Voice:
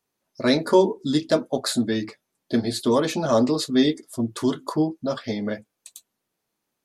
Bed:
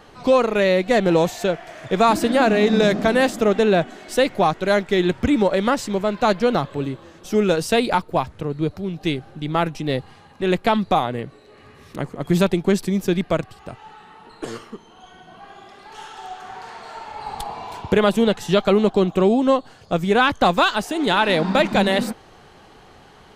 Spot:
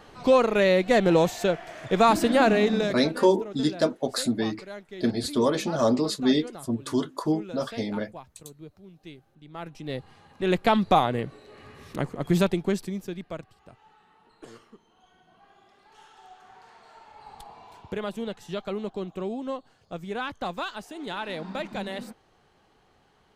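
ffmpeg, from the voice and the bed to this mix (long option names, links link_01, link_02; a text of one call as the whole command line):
ffmpeg -i stem1.wav -i stem2.wav -filter_complex "[0:a]adelay=2500,volume=-3dB[link_01];[1:a]volume=18dB,afade=type=out:start_time=2.5:duration=0.57:silence=0.112202,afade=type=in:start_time=9.51:duration=1.49:silence=0.0891251,afade=type=out:start_time=11.88:duration=1.24:silence=0.188365[link_02];[link_01][link_02]amix=inputs=2:normalize=0" out.wav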